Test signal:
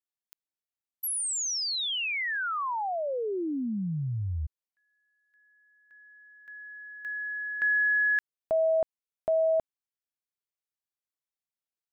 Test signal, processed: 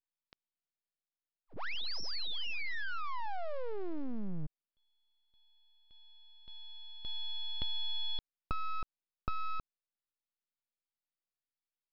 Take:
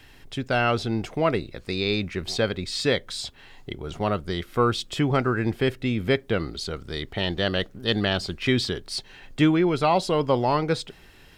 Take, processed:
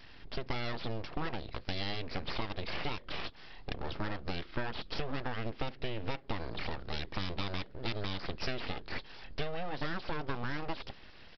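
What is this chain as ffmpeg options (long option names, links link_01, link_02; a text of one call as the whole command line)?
ffmpeg -i in.wav -af "acompressor=threshold=-31dB:ratio=10:attack=37:release=146:knee=1:detection=rms,aresample=11025,aeval=exprs='abs(val(0))':channel_layout=same,aresample=44100,volume=-1dB" out.wav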